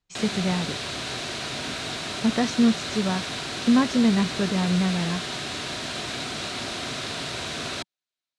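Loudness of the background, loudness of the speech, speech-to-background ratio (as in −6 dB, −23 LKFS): −30.0 LKFS, −24.5 LKFS, 5.5 dB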